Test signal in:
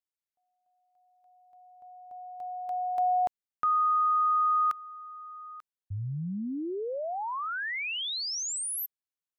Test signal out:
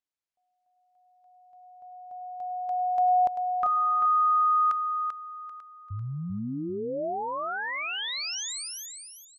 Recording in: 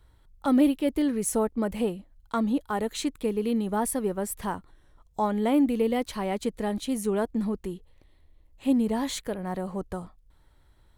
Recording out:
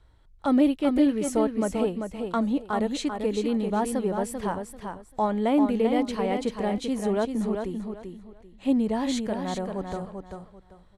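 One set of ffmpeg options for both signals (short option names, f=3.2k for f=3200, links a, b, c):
-af "lowpass=7.4k,equalizer=f=650:w=2.6:g=3,aecho=1:1:391|782|1173:0.501|0.12|0.0289"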